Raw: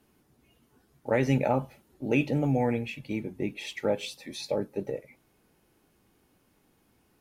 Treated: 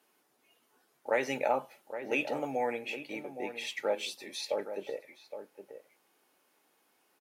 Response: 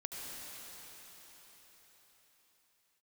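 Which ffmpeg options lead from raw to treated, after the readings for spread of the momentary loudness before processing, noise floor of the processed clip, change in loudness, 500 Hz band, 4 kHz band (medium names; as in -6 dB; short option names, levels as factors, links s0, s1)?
13 LU, -72 dBFS, -5.0 dB, -3.5 dB, 0.0 dB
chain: -filter_complex "[0:a]highpass=540,asplit=2[s0][s1];[s1]adelay=816.3,volume=0.316,highshelf=f=4000:g=-18.4[s2];[s0][s2]amix=inputs=2:normalize=0"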